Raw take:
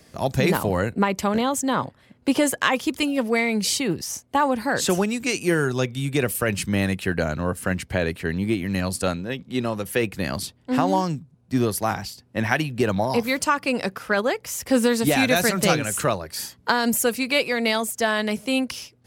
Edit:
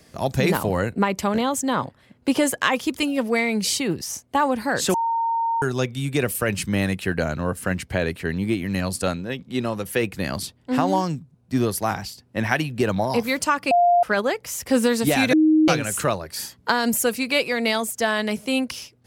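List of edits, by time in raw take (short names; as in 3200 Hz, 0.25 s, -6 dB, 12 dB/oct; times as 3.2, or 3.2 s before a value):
4.94–5.62 bleep 918 Hz -19.5 dBFS
13.71–14.03 bleep 701 Hz -13 dBFS
15.33–15.68 bleep 312 Hz -12.5 dBFS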